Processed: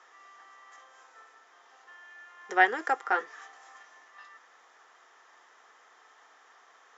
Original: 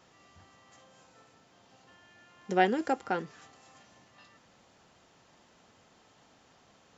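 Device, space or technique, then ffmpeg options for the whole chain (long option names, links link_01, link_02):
phone speaker on a table: -filter_complex "[0:a]highpass=frequency=450:width=0.5412,highpass=frequency=450:width=1.3066,equalizer=frequency=570:width_type=q:width=4:gain=-9,equalizer=frequency=1200:width_type=q:width=4:gain=7,equalizer=frequency=1800:width_type=q:width=4:gain=8,equalizer=frequency=2700:width_type=q:width=4:gain=-6,equalizer=frequency=4400:width_type=q:width=4:gain=-9,lowpass=frequency=6800:width=0.5412,lowpass=frequency=6800:width=1.3066,asettb=1/sr,asplit=3[link_01][link_02][link_03];[link_01]atrim=end=3.104[link_04];[link_02]atrim=start=3.1:end=3.73,asetpts=PTS-STARTPTS,afade=type=in:duration=0.004:curve=qsin,afade=type=out:start_time=0.626:duration=0.004:curve=qsin,asplit=2[link_05][link_06];[link_06]adelay=14,volume=-5.5dB[link_07];[link_05][link_07]amix=inputs=2:normalize=0,atrim=end_sample=27783[link_08];[link_03]atrim=start=3.726[link_09];[link_04][link_08]acrossfade=duration=0.004:curve1=hsin:curve2=qsin[link_10];[link_10][link_09]acrossfade=duration=0.004:curve1=qsin:curve2=hsin,volume=3.5dB"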